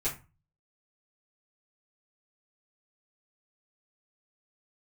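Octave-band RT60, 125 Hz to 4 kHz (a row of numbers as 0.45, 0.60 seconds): 0.55, 0.40, 0.30, 0.35, 0.30, 0.20 seconds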